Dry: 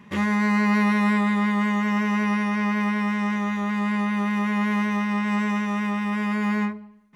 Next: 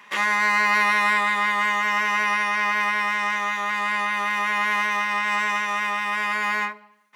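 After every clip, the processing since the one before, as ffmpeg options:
ffmpeg -i in.wav -af "highpass=920,volume=8dB" out.wav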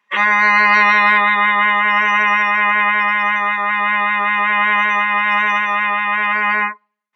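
ffmpeg -i in.wav -af "afftdn=noise_reduction=27:noise_floor=-30,volume=8dB" out.wav

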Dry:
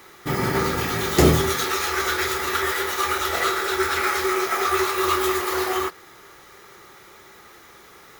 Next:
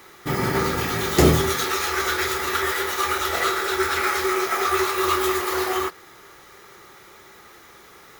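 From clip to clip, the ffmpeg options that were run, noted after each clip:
ffmpeg -i in.wav -af anull out.wav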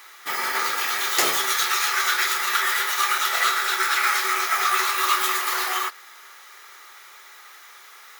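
ffmpeg -i in.wav -af "highpass=1100,volume=3.5dB" out.wav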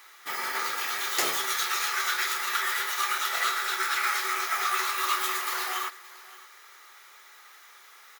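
ffmpeg -i in.wav -af "aecho=1:1:572:0.106,volume=-6dB" out.wav

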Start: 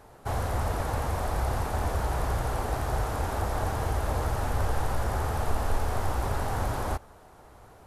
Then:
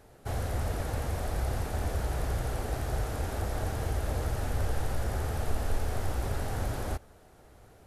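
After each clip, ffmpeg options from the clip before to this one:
ffmpeg -i in.wav -af "equalizer=frequency=1000:width=1.7:gain=-9,volume=-2dB" out.wav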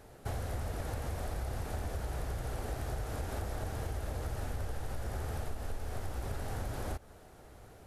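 ffmpeg -i in.wav -af "acompressor=threshold=-35dB:ratio=6,volume=1.5dB" out.wav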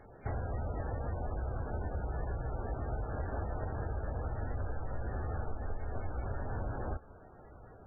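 ffmpeg -i in.wav -af "volume=1dB" -ar 16000 -c:a libmp3lame -b:a 8k out.mp3

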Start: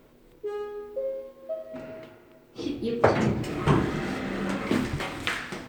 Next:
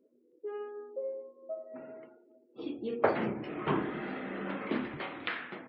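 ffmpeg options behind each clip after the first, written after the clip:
ffmpeg -i in.wav -filter_complex "[0:a]acrossover=split=180 4100:gain=0.126 1 0.0794[link_01][link_02][link_03];[link_01][link_02][link_03]amix=inputs=3:normalize=0,afftdn=noise_reduction=28:noise_floor=-49,volume=-6dB" out.wav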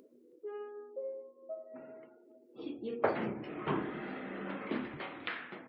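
ffmpeg -i in.wav -af "acompressor=mode=upward:threshold=-48dB:ratio=2.5,volume=-3.5dB" out.wav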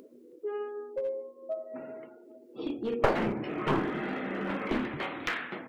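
ffmpeg -i in.wav -af "aeval=exprs='clip(val(0),-1,0.0168)':channel_layout=same,volume=8dB" out.wav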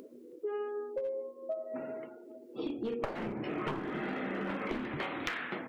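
ffmpeg -i in.wav -af "acompressor=threshold=-34dB:ratio=16,volume=2dB" out.wav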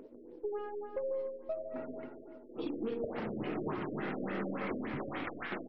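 ffmpeg -i in.wav -af "aeval=exprs='if(lt(val(0),0),0.708*val(0),val(0))':channel_layout=same,aecho=1:1:146|292|438|584|730:0.447|0.188|0.0788|0.0331|0.0139,afftfilt=real='re*lt(b*sr/1024,610*pow(6000/610,0.5+0.5*sin(2*PI*3.5*pts/sr)))':imag='im*lt(b*sr/1024,610*pow(6000/610,0.5+0.5*sin(2*PI*3.5*pts/sr)))':win_size=1024:overlap=0.75" out.wav

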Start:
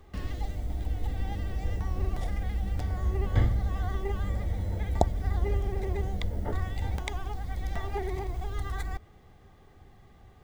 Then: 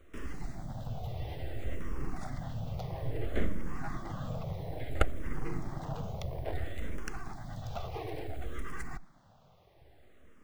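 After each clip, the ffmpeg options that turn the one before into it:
ffmpeg -i in.wav -filter_complex "[0:a]superequalizer=8b=2.24:9b=0.562,aeval=exprs='abs(val(0))':channel_layout=same,asplit=2[link_01][link_02];[link_02]afreqshift=-0.59[link_03];[link_01][link_03]amix=inputs=2:normalize=1,volume=-1dB" out.wav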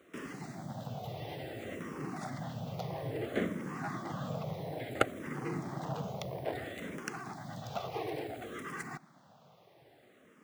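ffmpeg -i in.wav -af "highpass=frequency=140:width=0.5412,highpass=frequency=140:width=1.3066,volume=3dB" out.wav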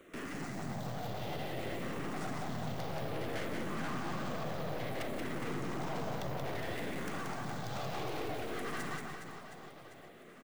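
ffmpeg -i in.wav -af "afftfilt=real='re*lt(hypot(re,im),0.126)':imag='im*lt(hypot(re,im),0.126)':win_size=1024:overlap=0.75,aeval=exprs='(tanh(178*val(0)+0.6)-tanh(0.6))/178':channel_layout=same,aecho=1:1:180|414|718.2|1114|1628:0.631|0.398|0.251|0.158|0.1,volume=6.5dB" out.wav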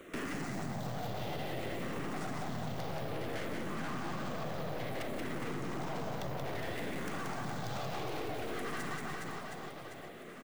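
ffmpeg -i in.wav -af "acompressor=threshold=-40dB:ratio=6,volume=6dB" out.wav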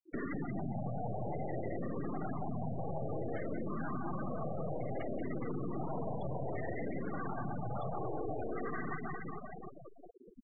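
ffmpeg -i in.wav -af "afftfilt=real='re*gte(hypot(re,im),0.0224)':imag='im*gte(hypot(re,im),0.0224)':win_size=1024:overlap=0.75,volume=1.5dB" out.wav

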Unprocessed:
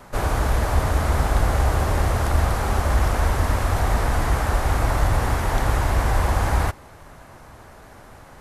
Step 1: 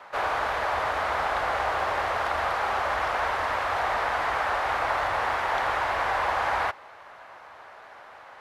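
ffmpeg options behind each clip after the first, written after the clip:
ffmpeg -i in.wav -filter_complex "[0:a]highpass=frequency=93:poles=1,acrossover=split=540 4100:gain=0.0708 1 0.0891[link_01][link_02][link_03];[link_01][link_02][link_03]amix=inputs=3:normalize=0,volume=2.5dB" out.wav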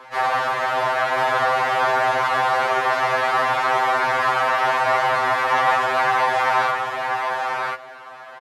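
ffmpeg -i in.wav -af "aecho=1:1:1039:0.631,afftfilt=real='re*2.45*eq(mod(b,6),0)':imag='im*2.45*eq(mod(b,6),0)':win_size=2048:overlap=0.75,volume=8dB" out.wav

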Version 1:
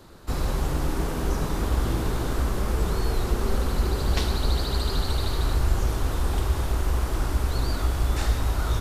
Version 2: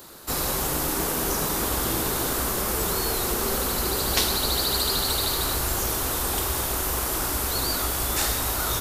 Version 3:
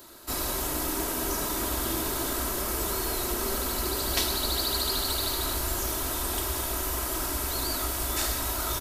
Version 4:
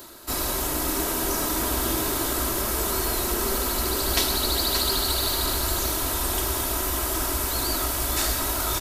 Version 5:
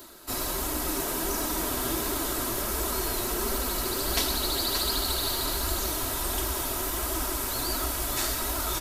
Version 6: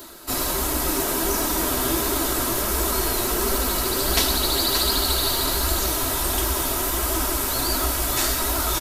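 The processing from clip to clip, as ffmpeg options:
ffmpeg -i in.wav -af "aemphasis=mode=production:type=bsi,volume=4dB" out.wav
ffmpeg -i in.wav -af "aecho=1:1:3.1:0.48,volume=-5dB" out.wav
ffmpeg -i in.wav -af "areverse,acompressor=mode=upward:threshold=-38dB:ratio=2.5,areverse,aecho=1:1:580:0.398,volume=3.5dB" out.wav
ffmpeg -i in.wav -af "flanger=delay=2.7:depth=6.1:regen=-31:speed=1.4:shape=triangular" out.wav
ffmpeg -i in.wav -filter_complex "[0:a]asplit=2[link_01][link_02];[link_02]adelay=15,volume=-11.5dB[link_03];[link_01][link_03]amix=inputs=2:normalize=0,volume=6dB" out.wav

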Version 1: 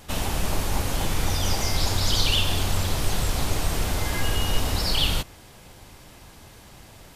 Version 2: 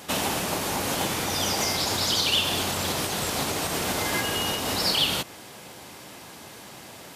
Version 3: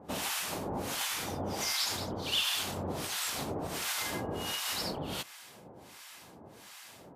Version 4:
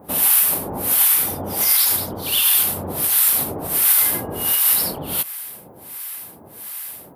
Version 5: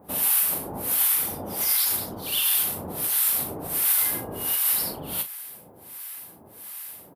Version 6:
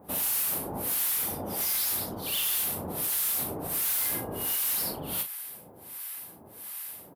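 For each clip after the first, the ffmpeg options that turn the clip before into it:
ffmpeg -i in.wav -af "acompressor=threshold=-24dB:ratio=2.5,highpass=190,volume=6dB" out.wav
ffmpeg -i in.wav -filter_complex "[0:a]acrossover=split=960[link_01][link_02];[link_01]aeval=exprs='val(0)*(1-1/2+1/2*cos(2*PI*1.4*n/s))':channel_layout=same[link_03];[link_02]aeval=exprs='val(0)*(1-1/2-1/2*cos(2*PI*1.4*n/s))':channel_layout=same[link_04];[link_03][link_04]amix=inputs=2:normalize=0,volume=-3.5dB" out.wav
ffmpeg -i in.wav -af "aexciter=amount=9.2:drive=6.3:freq=9500,volume=7.5dB" out.wav
ffmpeg -i in.wav -filter_complex "[0:a]asplit=2[link_01][link_02];[link_02]adelay=38,volume=-9dB[link_03];[link_01][link_03]amix=inputs=2:normalize=0,volume=-7dB" out.wav
ffmpeg -i in.wav -af "asoftclip=type=hard:threshold=-25dB,volume=-1dB" out.wav

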